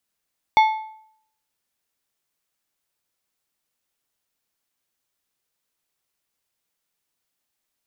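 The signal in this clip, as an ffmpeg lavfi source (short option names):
-f lavfi -i "aevalsrc='0.355*pow(10,-3*t/0.66)*sin(2*PI*873*t)+0.133*pow(10,-3*t/0.501)*sin(2*PI*2182.5*t)+0.0501*pow(10,-3*t/0.435)*sin(2*PI*3492*t)+0.0188*pow(10,-3*t/0.407)*sin(2*PI*4365*t)+0.00708*pow(10,-3*t/0.376)*sin(2*PI*5674.5*t)':d=1.55:s=44100"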